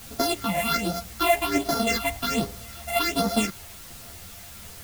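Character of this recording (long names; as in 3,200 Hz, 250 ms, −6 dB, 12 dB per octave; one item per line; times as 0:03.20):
a buzz of ramps at a fixed pitch in blocks of 64 samples
phaser sweep stages 6, 1.3 Hz, lowest notch 340–2,600 Hz
a quantiser's noise floor 8 bits, dither triangular
a shimmering, thickened sound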